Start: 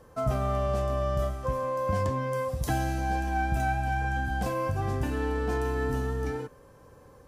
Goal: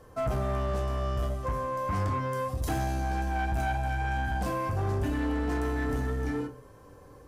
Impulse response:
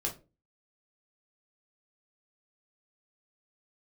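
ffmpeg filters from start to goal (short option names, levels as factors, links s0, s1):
-filter_complex "[0:a]asplit=2[s0][s1];[1:a]atrim=start_sample=2205,asetrate=37485,aresample=44100[s2];[s1][s2]afir=irnorm=-1:irlink=0,volume=0.596[s3];[s0][s3]amix=inputs=2:normalize=0,asoftclip=type=tanh:threshold=0.1,volume=0.668"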